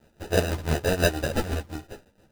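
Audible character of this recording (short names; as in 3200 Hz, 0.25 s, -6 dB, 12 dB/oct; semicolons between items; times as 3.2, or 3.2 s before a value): a quantiser's noise floor 10-bit, dither triangular; tremolo triangle 6 Hz, depth 75%; aliases and images of a low sample rate 1100 Hz, jitter 0%; a shimmering, thickened sound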